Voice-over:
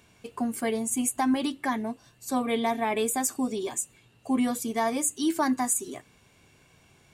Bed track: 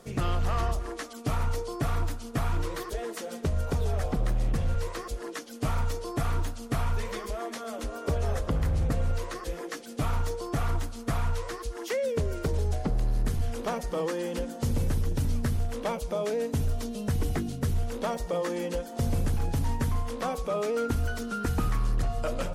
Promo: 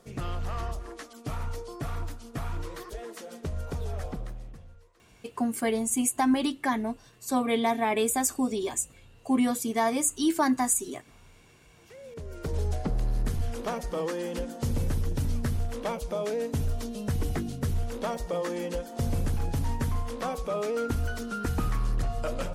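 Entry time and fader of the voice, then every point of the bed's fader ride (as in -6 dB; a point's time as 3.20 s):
5.00 s, +1.0 dB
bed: 4.09 s -5.5 dB
4.92 s -29.5 dB
11.64 s -29.5 dB
12.58 s -1 dB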